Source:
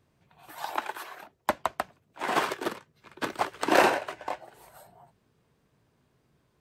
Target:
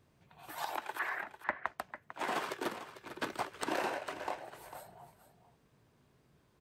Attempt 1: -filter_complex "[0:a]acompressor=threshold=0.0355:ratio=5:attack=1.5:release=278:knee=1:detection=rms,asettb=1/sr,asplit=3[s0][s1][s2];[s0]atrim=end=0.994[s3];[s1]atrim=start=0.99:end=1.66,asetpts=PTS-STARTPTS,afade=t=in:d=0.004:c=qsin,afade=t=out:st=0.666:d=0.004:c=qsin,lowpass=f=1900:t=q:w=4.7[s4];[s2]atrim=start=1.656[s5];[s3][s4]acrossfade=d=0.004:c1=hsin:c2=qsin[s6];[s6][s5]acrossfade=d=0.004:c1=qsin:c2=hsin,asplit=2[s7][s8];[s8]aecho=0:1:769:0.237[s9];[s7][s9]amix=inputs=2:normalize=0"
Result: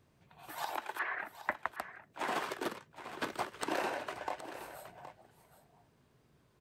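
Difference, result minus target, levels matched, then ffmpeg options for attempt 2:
echo 321 ms late
-filter_complex "[0:a]acompressor=threshold=0.0355:ratio=5:attack=1.5:release=278:knee=1:detection=rms,asettb=1/sr,asplit=3[s0][s1][s2];[s0]atrim=end=0.994[s3];[s1]atrim=start=0.99:end=1.66,asetpts=PTS-STARTPTS,afade=t=in:d=0.004:c=qsin,afade=t=out:st=0.666:d=0.004:c=qsin,lowpass=f=1900:t=q:w=4.7[s4];[s2]atrim=start=1.656[s5];[s3][s4]acrossfade=d=0.004:c1=hsin:c2=qsin[s6];[s6][s5]acrossfade=d=0.004:c1=qsin:c2=hsin,asplit=2[s7][s8];[s8]aecho=0:1:448:0.237[s9];[s7][s9]amix=inputs=2:normalize=0"

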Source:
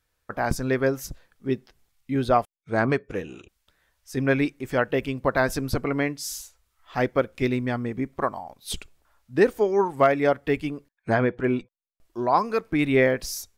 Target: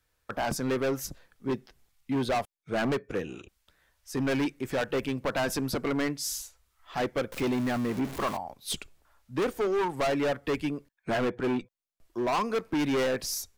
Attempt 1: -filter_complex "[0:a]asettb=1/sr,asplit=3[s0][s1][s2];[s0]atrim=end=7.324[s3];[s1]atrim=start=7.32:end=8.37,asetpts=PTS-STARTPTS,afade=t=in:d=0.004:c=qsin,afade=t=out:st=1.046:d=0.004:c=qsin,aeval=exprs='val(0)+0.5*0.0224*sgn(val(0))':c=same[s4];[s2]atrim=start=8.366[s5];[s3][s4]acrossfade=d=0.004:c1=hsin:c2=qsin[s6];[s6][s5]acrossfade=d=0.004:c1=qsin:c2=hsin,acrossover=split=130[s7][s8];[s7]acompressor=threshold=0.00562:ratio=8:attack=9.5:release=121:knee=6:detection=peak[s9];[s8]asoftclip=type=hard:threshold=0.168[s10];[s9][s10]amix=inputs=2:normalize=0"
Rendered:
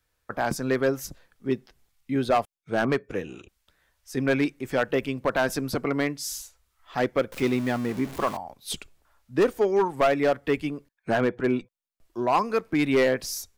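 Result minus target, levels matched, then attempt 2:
hard clipper: distortion -8 dB
-filter_complex "[0:a]asettb=1/sr,asplit=3[s0][s1][s2];[s0]atrim=end=7.324[s3];[s1]atrim=start=7.32:end=8.37,asetpts=PTS-STARTPTS,afade=t=in:d=0.004:c=qsin,afade=t=out:st=1.046:d=0.004:c=qsin,aeval=exprs='val(0)+0.5*0.0224*sgn(val(0))':c=same[s4];[s2]atrim=start=8.366[s5];[s3][s4]acrossfade=d=0.004:c1=hsin:c2=qsin[s6];[s6][s5]acrossfade=d=0.004:c1=qsin:c2=hsin,acrossover=split=130[s7][s8];[s7]acompressor=threshold=0.00562:ratio=8:attack=9.5:release=121:knee=6:detection=peak[s9];[s8]asoftclip=type=hard:threshold=0.0596[s10];[s9][s10]amix=inputs=2:normalize=0"

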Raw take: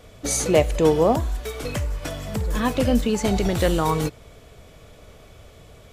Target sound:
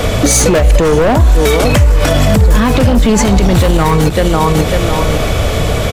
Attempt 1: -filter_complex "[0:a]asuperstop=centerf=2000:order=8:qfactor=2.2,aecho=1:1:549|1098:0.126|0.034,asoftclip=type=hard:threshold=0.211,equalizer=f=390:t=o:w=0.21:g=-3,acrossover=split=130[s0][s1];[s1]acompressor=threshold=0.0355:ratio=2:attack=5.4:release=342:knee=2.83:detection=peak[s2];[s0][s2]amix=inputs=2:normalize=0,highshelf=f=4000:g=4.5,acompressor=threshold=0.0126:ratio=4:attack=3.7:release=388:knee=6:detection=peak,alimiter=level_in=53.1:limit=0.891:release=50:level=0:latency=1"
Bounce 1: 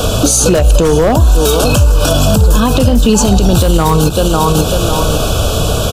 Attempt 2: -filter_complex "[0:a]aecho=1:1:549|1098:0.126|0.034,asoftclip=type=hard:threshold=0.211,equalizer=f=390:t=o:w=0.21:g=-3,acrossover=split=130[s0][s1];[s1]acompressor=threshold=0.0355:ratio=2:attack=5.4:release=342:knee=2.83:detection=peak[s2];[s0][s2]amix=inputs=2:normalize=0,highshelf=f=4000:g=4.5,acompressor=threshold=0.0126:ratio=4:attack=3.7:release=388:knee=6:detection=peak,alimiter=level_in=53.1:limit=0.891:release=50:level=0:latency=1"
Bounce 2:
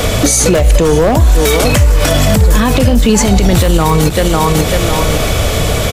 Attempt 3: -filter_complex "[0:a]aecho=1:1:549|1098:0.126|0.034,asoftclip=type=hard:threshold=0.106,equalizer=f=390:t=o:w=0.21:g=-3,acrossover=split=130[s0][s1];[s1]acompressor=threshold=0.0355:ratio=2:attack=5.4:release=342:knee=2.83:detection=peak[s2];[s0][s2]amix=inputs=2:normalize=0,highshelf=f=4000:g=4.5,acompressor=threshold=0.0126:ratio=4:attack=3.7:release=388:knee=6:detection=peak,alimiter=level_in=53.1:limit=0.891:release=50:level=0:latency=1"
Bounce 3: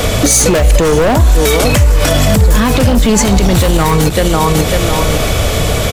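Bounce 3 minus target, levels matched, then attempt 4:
8 kHz band +3.0 dB
-filter_complex "[0:a]aecho=1:1:549|1098:0.126|0.034,asoftclip=type=hard:threshold=0.106,equalizer=f=390:t=o:w=0.21:g=-3,acrossover=split=130[s0][s1];[s1]acompressor=threshold=0.0355:ratio=2:attack=5.4:release=342:knee=2.83:detection=peak[s2];[s0][s2]amix=inputs=2:normalize=0,highshelf=f=4000:g=-3,acompressor=threshold=0.0126:ratio=4:attack=3.7:release=388:knee=6:detection=peak,alimiter=level_in=53.1:limit=0.891:release=50:level=0:latency=1"

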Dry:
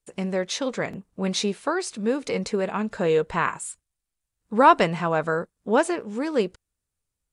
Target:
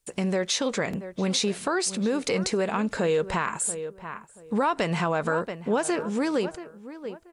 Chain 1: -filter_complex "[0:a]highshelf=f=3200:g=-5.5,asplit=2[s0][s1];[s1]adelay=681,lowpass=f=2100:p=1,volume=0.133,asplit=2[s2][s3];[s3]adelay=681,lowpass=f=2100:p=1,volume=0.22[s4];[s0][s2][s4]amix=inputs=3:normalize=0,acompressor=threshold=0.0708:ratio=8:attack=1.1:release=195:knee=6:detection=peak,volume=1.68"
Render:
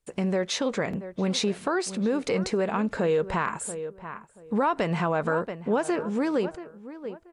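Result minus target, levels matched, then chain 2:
8 kHz band -6.0 dB
-filter_complex "[0:a]highshelf=f=3200:g=5,asplit=2[s0][s1];[s1]adelay=681,lowpass=f=2100:p=1,volume=0.133,asplit=2[s2][s3];[s3]adelay=681,lowpass=f=2100:p=1,volume=0.22[s4];[s0][s2][s4]amix=inputs=3:normalize=0,acompressor=threshold=0.0708:ratio=8:attack=1.1:release=195:knee=6:detection=peak,volume=1.68"

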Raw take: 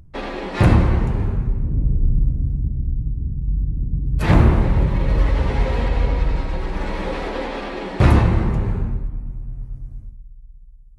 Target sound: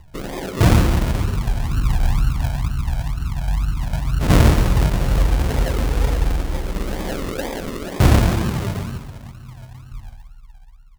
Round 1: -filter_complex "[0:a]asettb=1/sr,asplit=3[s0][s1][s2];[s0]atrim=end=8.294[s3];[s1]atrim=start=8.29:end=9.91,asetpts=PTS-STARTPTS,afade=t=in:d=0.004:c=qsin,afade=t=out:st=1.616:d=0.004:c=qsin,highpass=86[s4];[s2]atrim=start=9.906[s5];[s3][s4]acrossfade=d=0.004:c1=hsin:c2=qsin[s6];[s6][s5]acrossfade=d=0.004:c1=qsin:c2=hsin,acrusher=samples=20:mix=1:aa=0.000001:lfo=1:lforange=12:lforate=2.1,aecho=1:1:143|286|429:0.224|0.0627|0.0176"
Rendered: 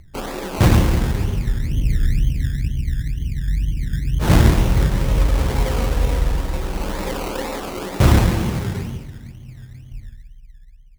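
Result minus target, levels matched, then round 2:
decimation with a swept rate: distortion -4 dB
-filter_complex "[0:a]asettb=1/sr,asplit=3[s0][s1][s2];[s0]atrim=end=8.294[s3];[s1]atrim=start=8.29:end=9.91,asetpts=PTS-STARTPTS,afade=t=in:d=0.004:c=qsin,afade=t=out:st=1.616:d=0.004:c=qsin,highpass=86[s4];[s2]atrim=start=9.906[s5];[s3][s4]acrossfade=d=0.004:c1=hsin:c2=qsin[s6];[s6][s5]acrossfade=d=0.004:c1=qsin:c2=hsin,acrusher=samples=44:mix=1:aa=0.000001:lfo=1:lforange=26.4:lforate=2.1,aecho=1:1:143|286|429:0.224|0.0627|0.0176"

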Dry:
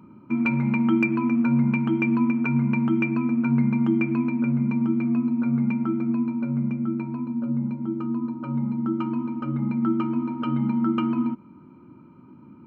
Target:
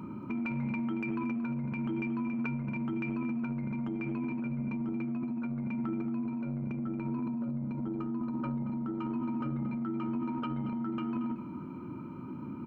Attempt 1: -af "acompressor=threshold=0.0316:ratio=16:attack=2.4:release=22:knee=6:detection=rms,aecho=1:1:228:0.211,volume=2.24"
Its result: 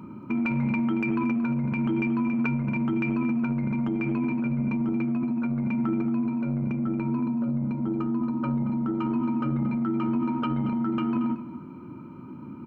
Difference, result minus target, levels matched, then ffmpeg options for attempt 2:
compression: peak gain reduction -8 dB
-af "acompressor=threshold=0.0119:ratio=16:attack=2.4:release=22:knee=6:detection=rms,aecho=1:1:228:0.211,volume=2.24"

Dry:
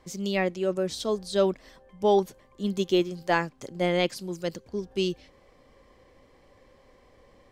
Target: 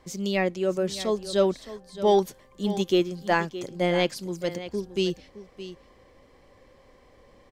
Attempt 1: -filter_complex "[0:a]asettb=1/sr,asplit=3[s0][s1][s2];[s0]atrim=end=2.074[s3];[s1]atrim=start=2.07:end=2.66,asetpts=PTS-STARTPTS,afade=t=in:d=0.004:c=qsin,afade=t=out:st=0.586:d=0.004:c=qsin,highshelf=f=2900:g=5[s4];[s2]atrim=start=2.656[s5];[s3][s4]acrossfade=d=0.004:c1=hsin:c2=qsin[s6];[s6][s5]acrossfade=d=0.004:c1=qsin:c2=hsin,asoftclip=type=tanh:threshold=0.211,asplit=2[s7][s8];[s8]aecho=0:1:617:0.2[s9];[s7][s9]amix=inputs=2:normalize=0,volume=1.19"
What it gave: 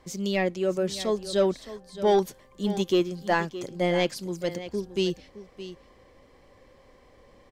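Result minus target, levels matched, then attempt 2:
saturation: distortion +11 dB
-filter_complex "[0:a]asettb=1/sr,asplit=3[s0][s1][s2];[s0]atrim=end=2.074[s3];[s1]atrim=start=2.07:end=2.66,asetpts=PTS-STARTPTS,afade=t=in:d=0.004:c=qsin,afade=t=out:st=0.586:d=0.004:c=qsin,highshelf=f=2900:g=5[s4];[s2]atrim=start=2.656[s5];[s3][s4]acrossfade=d=0.004:c1=hsin:c2=qsin[s6];[s6][s5]acrossfade=d=0.004:c1=qsin:c2=hsin,asoftclip=type=tanh:threshold=0.447,asplit=2[s7][s8];[s8]aecho=0:1:617:0.2[s9];[s7][s9]amix=inputs=2:normalize=0,volume=1.19"

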